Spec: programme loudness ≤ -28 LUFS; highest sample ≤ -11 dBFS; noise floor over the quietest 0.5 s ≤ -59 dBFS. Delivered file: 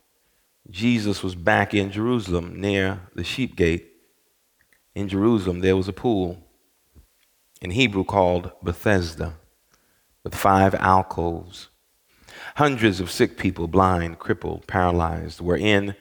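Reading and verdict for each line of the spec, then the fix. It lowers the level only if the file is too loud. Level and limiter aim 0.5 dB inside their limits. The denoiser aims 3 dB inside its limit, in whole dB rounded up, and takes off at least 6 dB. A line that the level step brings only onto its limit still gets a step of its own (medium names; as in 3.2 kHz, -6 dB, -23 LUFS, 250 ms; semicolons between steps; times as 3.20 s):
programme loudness -22.0 LUFS: fail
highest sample -2.5 dBFS: fail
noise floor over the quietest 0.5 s -66 dBFS: pass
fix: trim -6.5 dB; peak limiter -11.5 dBFS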